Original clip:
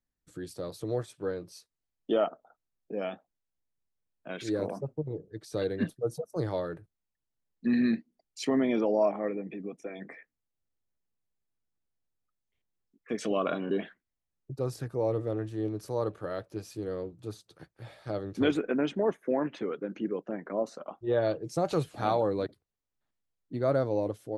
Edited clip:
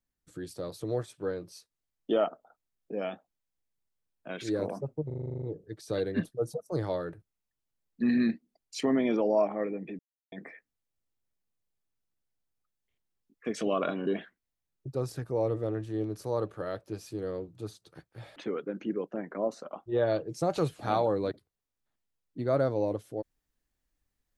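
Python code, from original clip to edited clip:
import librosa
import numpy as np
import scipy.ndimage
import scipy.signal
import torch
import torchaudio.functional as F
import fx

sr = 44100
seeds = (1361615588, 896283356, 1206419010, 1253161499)

y = fx.edit(x, sr, fx.stutter(start_s=5.06, slice_s=0.04, count=10),
    fx.silence(start_s=9.63, length_s=0.33),
    fx.cut(start_s=18.0, length_s=1.51), tone=tone)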